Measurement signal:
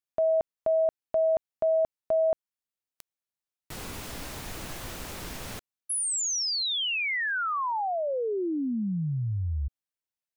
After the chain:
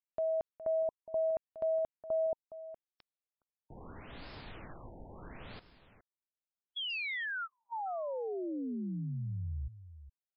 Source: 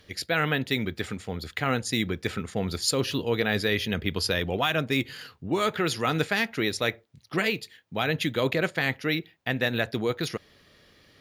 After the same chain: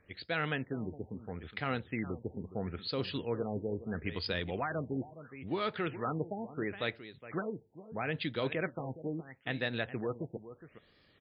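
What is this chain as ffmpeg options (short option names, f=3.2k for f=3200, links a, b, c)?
-filter_complex "[0:a]asplit=2[a][b];[b]aecho=0:1:415:0.2[c];[a][c]amix=inputs=2:normalize=0,afftfilt=real='re*lt(b*sr/1024,910*pow(5400/910,0.5+0.5*sin(2*PI*0.75*pts/sr)))':imag='im*lt(b*sr/1024,910*pow(5400/910,0.5+0.5*sin(2*PI*0.75*pts/sr)))':win_size=1024:overlap=0.75,volume=-8.5dB"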